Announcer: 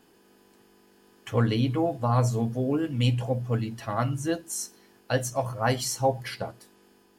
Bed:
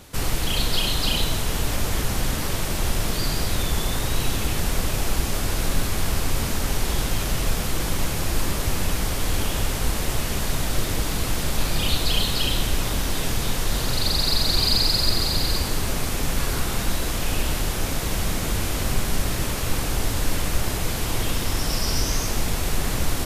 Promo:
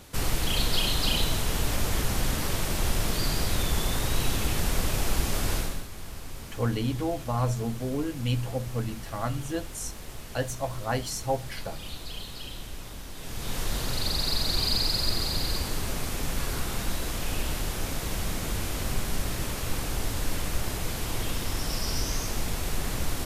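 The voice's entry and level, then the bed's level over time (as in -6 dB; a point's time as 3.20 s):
5.25 s, -4.0 dB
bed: 5.56 s -3 dB
5.87 s -16.5 dB
13.15 s -16.5 dB
13.58 s -6 dB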